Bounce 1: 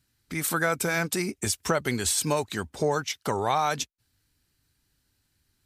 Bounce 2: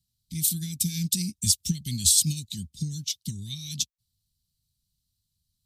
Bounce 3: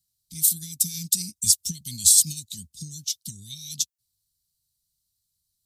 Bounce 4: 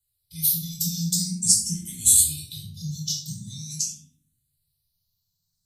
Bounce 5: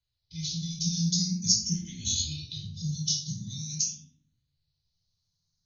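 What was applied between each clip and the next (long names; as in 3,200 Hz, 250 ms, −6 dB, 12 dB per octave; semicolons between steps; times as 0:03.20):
elliptic band-stop filter 190–3,600 Hz, stop band 50 dB; expander for the loud parts 1.5 to 1, over −51 dBFS; level +8 dB
bass and treble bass −1 dB, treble +13 dB; level −7.5 dB
convolution reverb RT60 0.65 s, pre-delay 11 ms, DRR −3 dB; frequency shifter mixed with the dry sound +0.45 Hz; level −2.5 dB
AC-3 48 kbit/s 48,000 Hz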